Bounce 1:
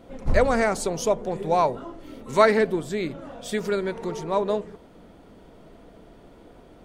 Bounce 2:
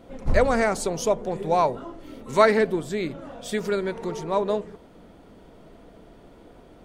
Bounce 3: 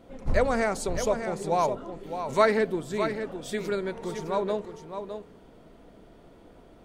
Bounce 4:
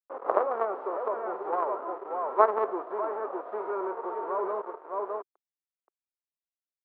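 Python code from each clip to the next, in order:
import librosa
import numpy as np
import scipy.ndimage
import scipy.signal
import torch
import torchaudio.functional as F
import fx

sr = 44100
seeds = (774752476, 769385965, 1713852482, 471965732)

y1 = x
y2 = y1 + 10.0 ** (-8.5 / 20.0) * np.pad(y1, (int(610 * sr / 1000.0), 0))[:len(y1)]
y2 = F.gain(torch.from_numpy(y2), -4.0).numpy()
y3 = fx.envelope_flatten(y2, sr, power=0.3)
y3 = fx.quant_companded(y3, sr, bits=2)
y3 = scipy.signal.sosfilt(scipy.signal.ellip(3, 1.0, 80, [370.0, 1200.0], 'bandpass', fs=sr, output='sos'), y3)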